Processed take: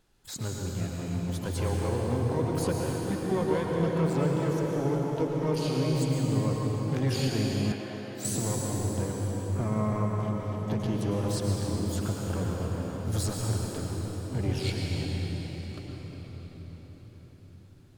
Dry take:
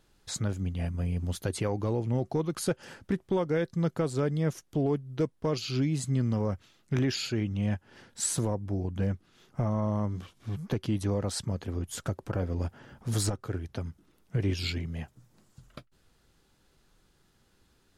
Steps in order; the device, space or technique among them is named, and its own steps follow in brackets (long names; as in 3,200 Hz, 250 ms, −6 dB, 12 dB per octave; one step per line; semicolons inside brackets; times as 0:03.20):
shimmer-style reverb (pitch-shifted copies added +12 semitones −10 dB; convolution reverb RT60 5.6 s, pre-delay 100 ms, DRR −2 dB)
0:07.72–0:08.25: bass and treble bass −14 dB, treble −9 dB
level −3.5 dB